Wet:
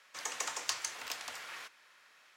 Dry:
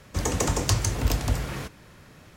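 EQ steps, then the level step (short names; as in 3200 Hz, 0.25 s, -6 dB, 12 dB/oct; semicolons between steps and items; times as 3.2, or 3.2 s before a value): HPF 1300 Hz 12 dB/oct; high shelf 7600 Hz -10.5 dB; -4.0 dB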